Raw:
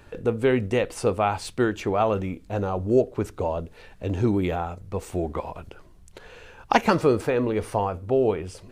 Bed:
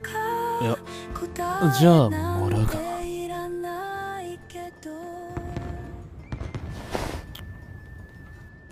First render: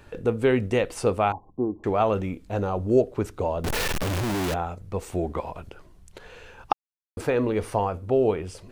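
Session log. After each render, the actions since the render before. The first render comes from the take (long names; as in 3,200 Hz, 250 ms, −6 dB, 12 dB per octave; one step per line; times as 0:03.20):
0:01.32–0:01.84: Chebyshev low-pass with heavy ripple 1,100 Hz, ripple 9 dB
0:03.64–0:04.54: sign of each sample alone
0:06.73–0:07.17: silence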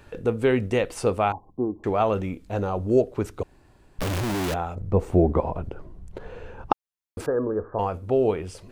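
0:03.43–0:03.99: fill with room tone
0:04.75–0:06.72: tilt shelving filter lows +10 dB, about 1,500 Hz
0:07.26–0:07.79: Chebyshev low-pass with heavy ripple 1,700 Hz, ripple 6 dB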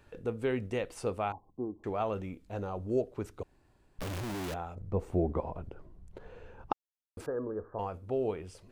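level −10.5 dB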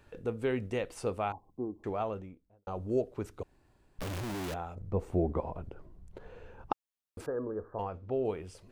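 0:01.83–0:02.67: fade out and dull
0:07.82–0:08.25: high-frequency loss of the air 140 metres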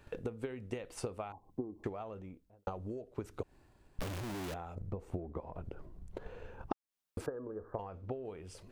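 downward compressor 20 to 1, threshold −40 dBFS, peak gain reduction 17 dB
transient designer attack +7 dB, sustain +3 dB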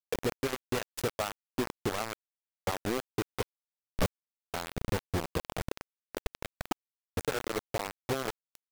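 log-companded quantiser 2 bits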